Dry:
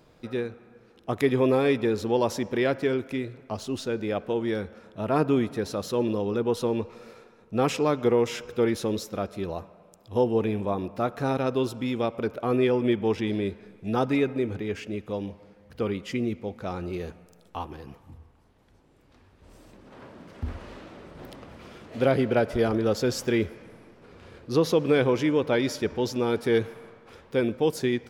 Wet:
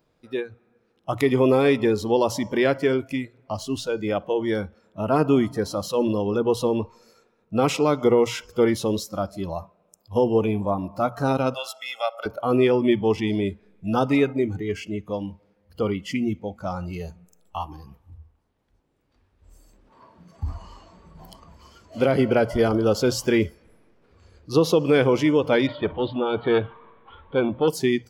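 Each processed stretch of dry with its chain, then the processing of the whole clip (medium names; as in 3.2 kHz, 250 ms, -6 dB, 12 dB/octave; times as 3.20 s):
11.54–12.26 s: Bessel high-pass 790 Hz, order 4 + comb 1.5 ms, depth 79%
25.67–27.68 s: companding laws mixed up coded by mu + elliptic low-pass 3.7 kHz + transformer saturation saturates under 570 Hz
whole clip: hum notches 60/120 Hz; spectral noise reduction 15 dB; loudness maximiser +12 dB; trim -7.5 dB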